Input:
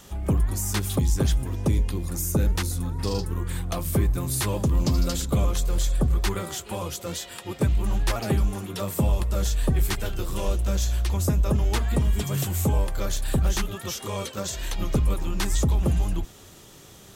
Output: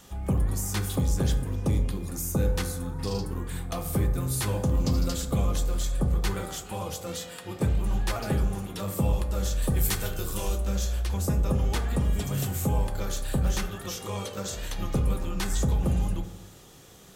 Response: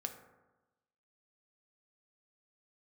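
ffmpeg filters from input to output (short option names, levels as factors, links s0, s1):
-filter_complex "[0:a]asettb=1/sr,asplit=3[s0][s1][s2];[s0]atrim=end=9.624[s3];[s1]atrim=start=9.62:end=10.58,asetpts=PTS-STARTPTS,afade=t=in:d=0.004:c=qsin,afade=t=out:st=0.956:d=0.004:c=qsin,highshelf=f=5500:g=10.5[s4];[s2]atrim=start=10.576[s5];[s3][s4]acrossfade=d=0.004:c1=hsin:c2=qsin[s6];[s6][s5]acrossfade=d=0.004:c1=qsin:c2=hsin[s7];[1:a]atrim=start_sample=2205[s8];[s7][s8]afir=irnorm=-1:irlink=0,volume=0.841"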